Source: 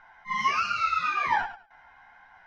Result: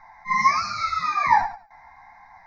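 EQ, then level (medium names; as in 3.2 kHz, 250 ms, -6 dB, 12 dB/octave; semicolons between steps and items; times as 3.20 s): Butterworth band-stop 2.8 kHz, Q 2.1; static phaser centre 2.2 kHz, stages 8; +8.5 dB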